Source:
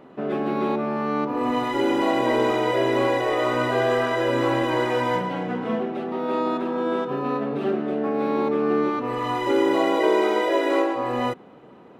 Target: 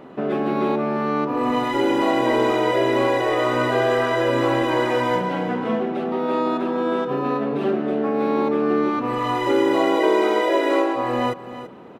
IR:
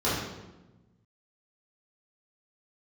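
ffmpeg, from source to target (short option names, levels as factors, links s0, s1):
-filter_complex "[0:a]aecho=1:1:334:0.158,asplit=2[s0][s1];[s1]acompressor=threshold=0.0316:ratio=6,volume=0.891[s2];[s0][s2]amix=inputs=2:normalize=0"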